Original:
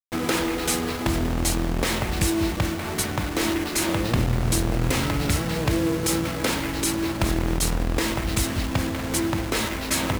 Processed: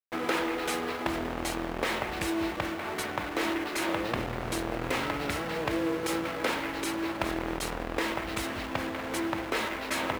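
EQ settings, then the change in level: tone controls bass -15 dB, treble -13 dB; high shelf 12000 Hz +3 dB; -2.0 dB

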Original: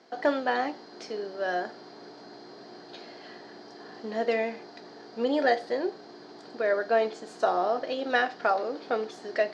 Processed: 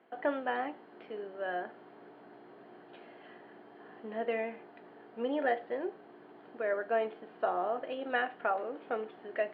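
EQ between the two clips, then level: elliptic low-pass 3000 Hz, stop band 60 dB; -6.0 dB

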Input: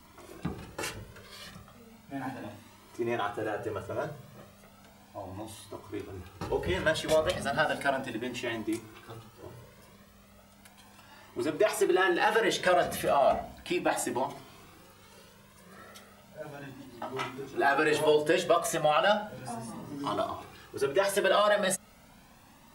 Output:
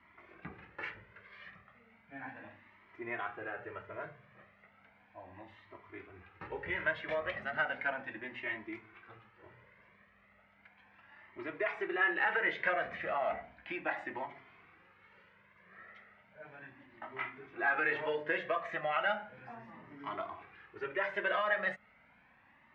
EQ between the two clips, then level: HPF 49 Hz; ladder low-pass 2300 Hz, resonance 60%; tilt shelf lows -3.5 dB, about 720 Hz; 0.0 dB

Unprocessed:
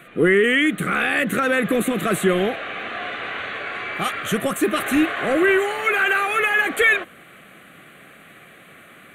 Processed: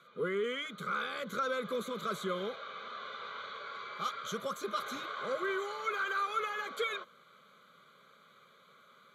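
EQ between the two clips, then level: BPF 340–7000 Hz; fixed phaser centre 750 Hz, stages 4; fixed phaser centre 2700 Hz, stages 6; -2.5 dB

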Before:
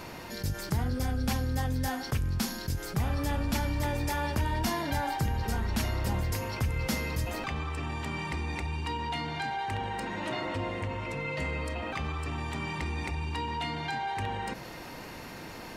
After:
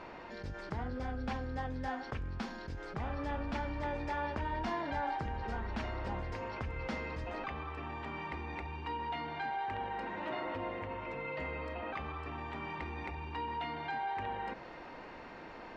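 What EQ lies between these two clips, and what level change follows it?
tape spacing loss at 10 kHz 38 dB; bell 120 Hz -8 dB 1.5 oct; low shelf 420 Hz -8 dB; +2.0 dB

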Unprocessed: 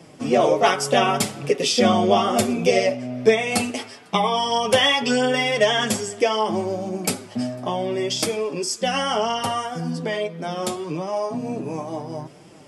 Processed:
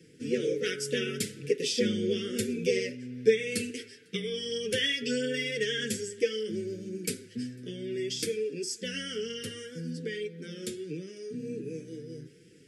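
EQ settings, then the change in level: elliptic band-stop 440–1600 Hz, stop band 40 dB; bell 490 Hz +9 dB 0.28 oct; -9.0 dB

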